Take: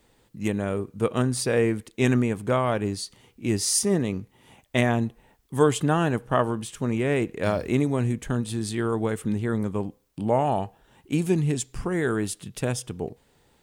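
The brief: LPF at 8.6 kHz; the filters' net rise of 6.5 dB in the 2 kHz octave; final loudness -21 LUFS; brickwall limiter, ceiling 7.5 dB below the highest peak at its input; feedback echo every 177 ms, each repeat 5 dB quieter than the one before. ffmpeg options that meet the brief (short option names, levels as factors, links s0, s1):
-af "lowpass=8600,equalizer=f=2000:t=o:g=8,alimiter=limit=0.237:level=0:latency=1,aecho=1:1:177|354|531|708|885|1062|1239:0.562|0.315|0.176|0.0988|0.0553|0.031|0.0173,volume=1.58"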